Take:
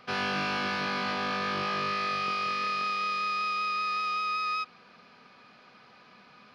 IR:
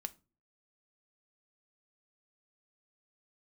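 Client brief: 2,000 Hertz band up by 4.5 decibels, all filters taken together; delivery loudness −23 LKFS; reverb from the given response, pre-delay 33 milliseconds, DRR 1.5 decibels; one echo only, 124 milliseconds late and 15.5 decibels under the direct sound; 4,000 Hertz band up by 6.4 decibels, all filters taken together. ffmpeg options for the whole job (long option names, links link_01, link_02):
-filter_complex "[0:a]equalizer=frequency=2000:width_type=o:gain=3.5,equalizer=frequency=4000:width_type=o:gain=7,aecho=1:1:124:0.168,asplit=2[link_01][link_02];[1:a]atrim=start_sample=2205,adelay=33[link_03];[link_02][link_03]afir=irnorm=-1:irlink=0,volume=1dB[link_04];[link_01][link_04]amix=inputs=2:normalize=0"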